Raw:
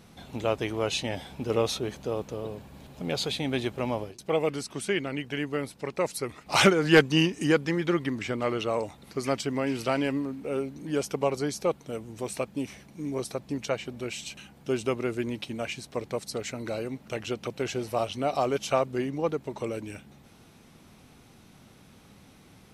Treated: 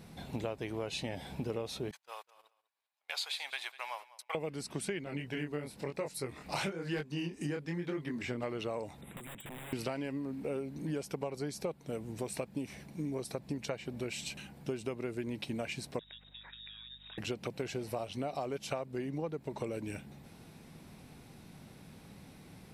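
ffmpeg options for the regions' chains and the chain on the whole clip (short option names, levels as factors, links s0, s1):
-filter_complex "[0:a]asettb=1/sr,asplit=3[s0][s1][s2];[s0]atrim=end=1.914[s3];[s1]atrim=start=1.91:end=4.35,asetpts=PTS-STARTPTS,afade=t=in:d=0.004:c=qsin,afade=t=out:st=2.436:d=0.004:c=qsin,highpass=f=960:w=0.5412,highpass=f=960:w=1.3066,agate=range=0.0251:threshold=0.00398:ratio=16:release=100:detection=peak,aecho=1:1:198|396:0.112|0.0224,atrim=end_sample=107604[s4];[s2]atrim=start=4.346[s5];[s3][s4]acrossfade=d=0.004:c1=hsin:c2=qsin[s6];[s6][s5]acrossfade=d=0.004:c1=qsin:c2=hsin,asettb=1/sr,asplit=3[s7][s8][s9];[s7]atrim=end=5.044[s10];[s8]atrim=start=5.04:end=8.43,asetpts=PTS-STARTPTS,afade=t=in:d=0.004:c=qsin,afade=t=out:st=3.386:d=0.004:c=qsin,acompressor=mode=upward:threshold=0.0141:ratio=2.5:attack=3.2:release=140:knee=2.83:detection=peak,flanger=delay=20:depth=7.2:speed=1[s11];[s9]atrim=start=8.426[s12];[s10][s11]acrossfade=d=0.004:c1=hsin:c2=qsin[s13];[s13][s12]acrossfade=d=0.004:c1=qsin:c2=hsin,asettb=1/sr,asplit=3[s14][s15][s16];[s14]atrim=end=9.014[s17];[s15]atrim=start=9.01:end=9.73,asetpts=PTS-STARTPTS,afade=t=in:d=0.004:c=qsin,afade=t=out:st=0.716:d=0.004:c=qsin,aeval=exprs='(mod(22.4*val(0)+1,2)-1)/22.4':c=same,acompressor=threshold=0.00708:ratio=12:attack=3.2:release=140:knee=1:detection=peak,asuperstop=centerf=5300:order=20:qfactor=1.5[s18];[s16]atrim=start=9.726[s19];[s17][s18]acrossfade=d=0.004:c1=hsin:c2=qsin[s20];[s20][s19]acrossfade=d=0.004:c1=qsin:c2=hsin,asettb=1/sr,asplit=3[s21][s22][s23];[s21]atrim=end=15.994[s24];[s22]atrim=start=15.99:end=17.18,asetpts=PTS-STARTPTS,afade=t=in:d=0.004:c=qsin,afade=t=out:st=1.186:d=0.004:c=qsin,acompressor=threshold=0.00631:ratio=16:attack=3.2:release=140:knee=1:detection=peak,lowpass=f=3300:t=q:w=0.5098,lowpass=f=3300:t=q:w=0.6013,lowpass=f=3300:t=q:w=0.9,lowpass=f=3300:t=q:w=2.563,afreqshift=-3900,aeval=exprs='val(0)+0.000794*(sin(2*PI*50*n/s)+sin(2*PI*2*50*n/s)/2+sin(2*PI*3*50*n/s)/3+sin(2*PI*4*50*n/s)/4+sin(2*PI*5*50*n/s)/5)':c=same[s25];[s23]atrim=start=17.176[s26];[s24][s25]acrossfade=d=0.004:c1=hsin:c2=qsin[s27];[s27][s26]acrossfade=d=0.004:c1=qsin:c2=hsin,equalizer=f=160:t=o:w=0.33:g=5,equalizer=f=1250:t=o:w=0.33:g=-5,equalizer=f=3150:t=o:w=0.33:g=-4,equalizer=f=6300:t=o:w=0.33:g=-5,acompressor=threshold=0.0224:ratio=12"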